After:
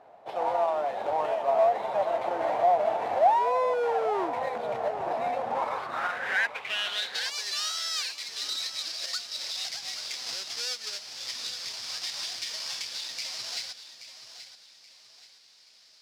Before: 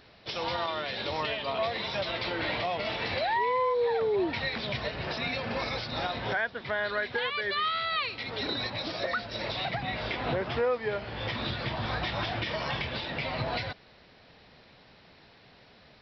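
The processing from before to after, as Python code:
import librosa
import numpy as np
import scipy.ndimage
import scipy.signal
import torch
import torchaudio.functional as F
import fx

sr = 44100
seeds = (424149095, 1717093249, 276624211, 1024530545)

y = fx.halfwave_hold(x, sr)
y = fx.filter_sweep_bandpass(y, sr, from_hz=740.0, to_hz=5000.0, start_s=5.45, end_s=7.33, q=4.4)
y = fx.echo_feedback(y, sr, ms=828, feedback_pct=35, wet_db=-12.0)
y = y * librosa.db_to_amplitude(8.5)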